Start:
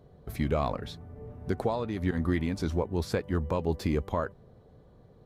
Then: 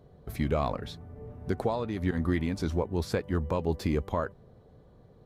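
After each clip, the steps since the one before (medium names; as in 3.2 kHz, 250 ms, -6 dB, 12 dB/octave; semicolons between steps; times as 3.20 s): no audible change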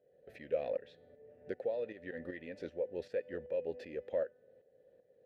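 vowel filter e; feedback comb 250 Hz, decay 0.88 s, mix 40%; tremolo saw up 2.6 Hz, depth 65%; trim +9.5 dB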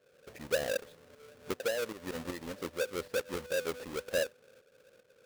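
square wave that keeps the level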